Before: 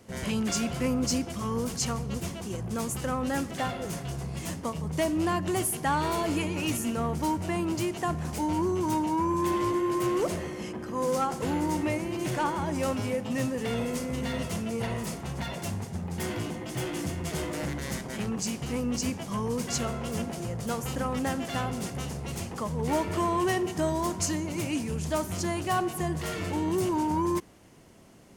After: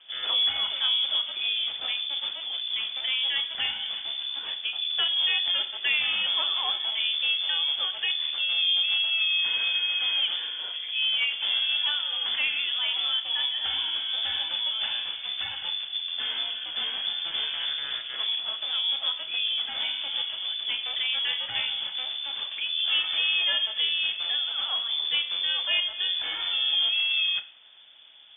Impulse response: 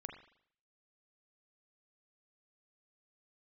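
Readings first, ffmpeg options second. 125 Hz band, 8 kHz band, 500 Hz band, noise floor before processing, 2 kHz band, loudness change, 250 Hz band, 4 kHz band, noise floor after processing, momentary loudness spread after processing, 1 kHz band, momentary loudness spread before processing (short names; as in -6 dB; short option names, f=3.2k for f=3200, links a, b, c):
under -30 dB, under -40 dB, -19.5 dB, -39 dBFS, +8.0 dB, +5.0 dB, under -30 dB, +20.0 dB, -38 dBFS, 7 LU, -11.5 dB, 7 LU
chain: -filter_complex "[0:a]asplit=2[a][b];[1:a]atrim=start_sample=2205,asetrate=61740,aresample=44100,lowshelf=f=120:g=7.5[c];[b][c]afir=irnorm=-1:irlink=0,volume=4.5dB[d];[a][d]amix=inputs=2:normalize=0,lowpass=f=3.1k:t=q:w=0.5098,lowpass=f=3.1k:t=q:w=0.6013,lowpass=f=3.1k:t=q:w=0.9,lowpass=f=3.1k:t=q:w=2.563,afreqshift=-3600,volume=-3.5dB"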